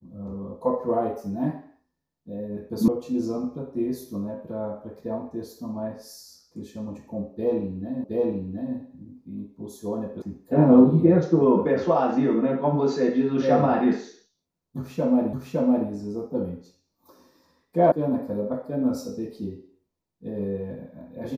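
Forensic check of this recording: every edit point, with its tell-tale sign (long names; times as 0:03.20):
0:02.88: cut off before it has died away
0:08.04: the same again, the last 0.72 s
0:10.22: cut off before it has died away
0:15.33: the same again, the last 0.56 s
0:17.92: cut off before it has died away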